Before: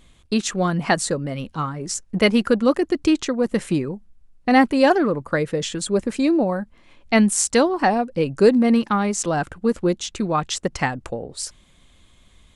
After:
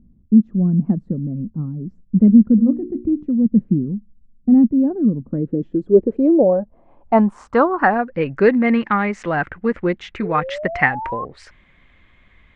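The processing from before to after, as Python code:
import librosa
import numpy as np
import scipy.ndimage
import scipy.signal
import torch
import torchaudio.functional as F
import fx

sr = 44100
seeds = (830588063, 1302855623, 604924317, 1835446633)

y = fx.spec_paint(x, sr, seeds[0], shape='rise', start_s=10.22, length_s=1.03, low_hz=420.0, high_hz=1100.0, level_db=-29.0)
y = fx.filter_sweep_lowpass(y, sr, from_hz=220.0, to_hz=2000.0, start_s=5.16, end_s=8.27, q=3.5)
y = fx.hum_notches(y, sr, base_hz=60, count=8, at=(2.57, 3.25), fade=0.02)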